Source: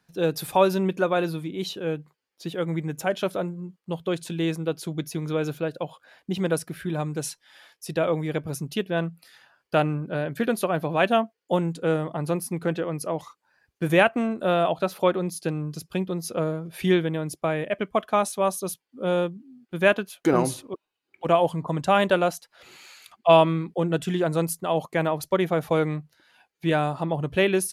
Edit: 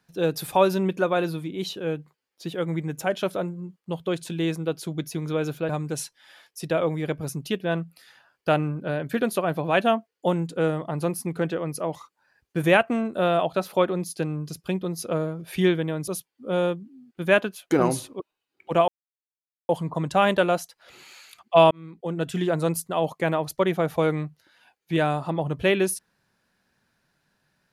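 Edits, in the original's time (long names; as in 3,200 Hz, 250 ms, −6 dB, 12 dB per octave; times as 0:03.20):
0:05.69–0:06.95: remove
0:17.34–0:18.62: remove
0:21.42: splice in silence 0.81 s
0:23.44–0:24.13: fade in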